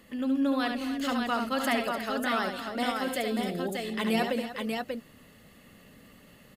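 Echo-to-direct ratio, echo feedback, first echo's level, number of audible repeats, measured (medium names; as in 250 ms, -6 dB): -1.5 dB, no regular repeats, -6.0 dB, 4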